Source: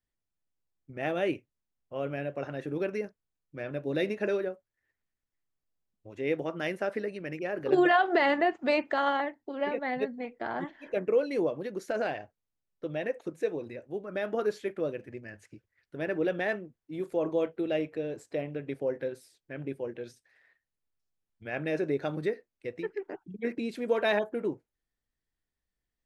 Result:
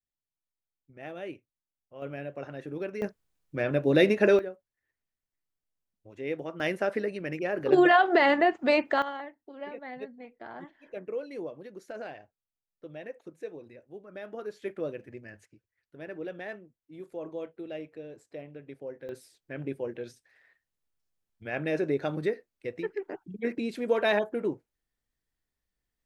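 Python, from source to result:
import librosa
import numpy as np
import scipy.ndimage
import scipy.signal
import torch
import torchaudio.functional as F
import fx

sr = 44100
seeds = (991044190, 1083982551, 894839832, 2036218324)

y = fx.gain(x, sr, db=fx.steps((0.0, -10.0), (2.02, -3.5), (3.02, 8.5), (4.39, -3.5), (6.6, 3.0), (9.02, -9.0), (14.62, -2.0), (15.45, -9.0), (19.09, 1.5)))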